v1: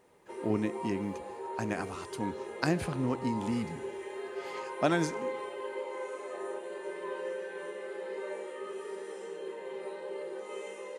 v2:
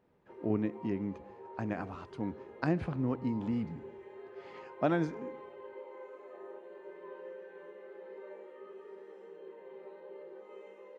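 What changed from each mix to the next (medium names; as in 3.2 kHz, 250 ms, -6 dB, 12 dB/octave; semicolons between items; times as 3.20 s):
background -7.5 dB; master: add tape spacing loss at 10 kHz 31 dB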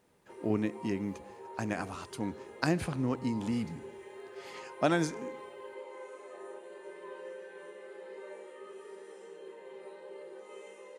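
master: remove tape spacing loss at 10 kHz 31 dB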